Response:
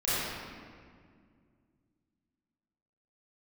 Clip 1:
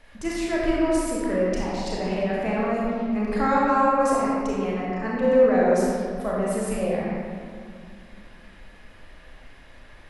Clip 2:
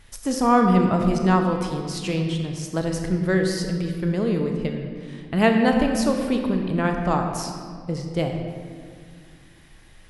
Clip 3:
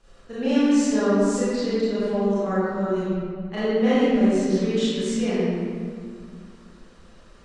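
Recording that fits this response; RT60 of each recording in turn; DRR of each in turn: 3; 2.1 s, 2.1 s, 2.0 s; -5.5 dB, 3.5 dB, -12.5 dB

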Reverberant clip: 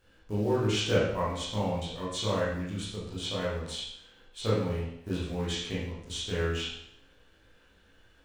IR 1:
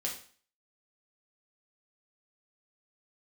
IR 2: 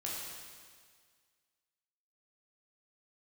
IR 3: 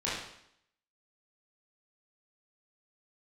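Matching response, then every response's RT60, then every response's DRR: 3; 0.45 s, 1.8 s, 0.70 s; -2.5 dB, -5.5 dB, -9.0 dB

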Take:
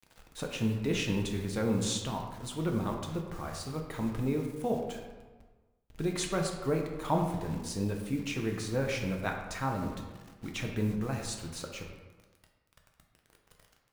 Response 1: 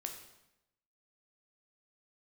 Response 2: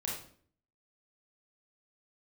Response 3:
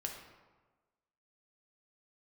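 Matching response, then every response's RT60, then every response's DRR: 3; 0.90 s, 0.55 s, 1.3 s; 3.5 dB, -4.0 dB, 1.0 dB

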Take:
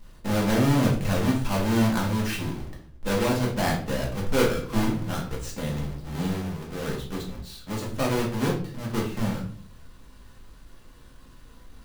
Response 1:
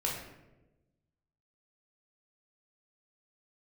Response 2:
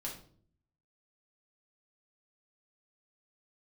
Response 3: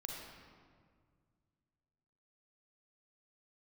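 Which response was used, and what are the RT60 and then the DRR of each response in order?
2; 1.1 s, 0.55 s, 1.9 s; -3.0 dB, -3.0 dB, -0.5 dB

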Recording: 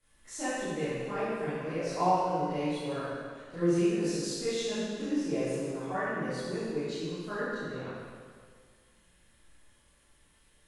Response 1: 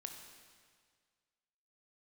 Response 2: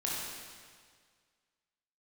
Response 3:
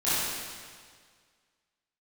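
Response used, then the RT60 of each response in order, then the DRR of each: 3; 1.8 s, 1.8 s, 1.8 s; 4.0 dB, -5.5 dB, -14.0 dB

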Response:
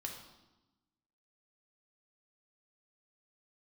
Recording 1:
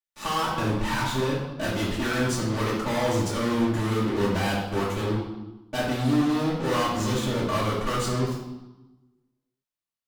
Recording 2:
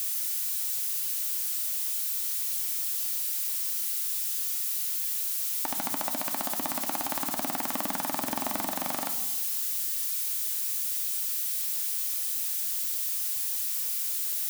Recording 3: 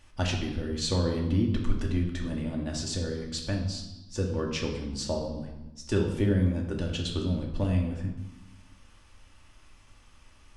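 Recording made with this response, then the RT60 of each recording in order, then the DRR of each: 3; 1.0 s, 1.0 s, 1.0 s; -9.0 dB, 5.5 dB, 0.0 dB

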